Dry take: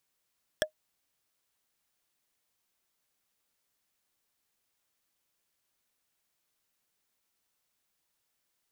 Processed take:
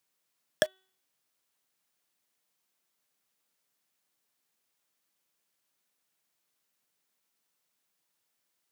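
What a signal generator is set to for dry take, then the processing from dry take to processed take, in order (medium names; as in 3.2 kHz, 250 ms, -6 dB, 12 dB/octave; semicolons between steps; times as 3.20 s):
wood hit, lowest mode 619 Hz, decay 0.10 s, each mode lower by 0 dB, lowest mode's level -20 dB
high-pass 120 Hz 24 dB/octave; de-hum 378.1 Hz, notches 12; in parallel at -1.5 dB: bit crusher 7-bit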